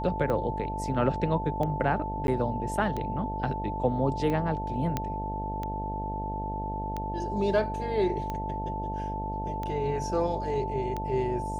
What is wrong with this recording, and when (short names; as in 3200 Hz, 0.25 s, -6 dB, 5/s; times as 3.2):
buzz 50 Hz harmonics 15 -35 dBFS
tick 45 rpm -20 dBFS
tone 880 Hz -33 dBFS
2.27–2.28 gap
4.97 pop -14 dBFS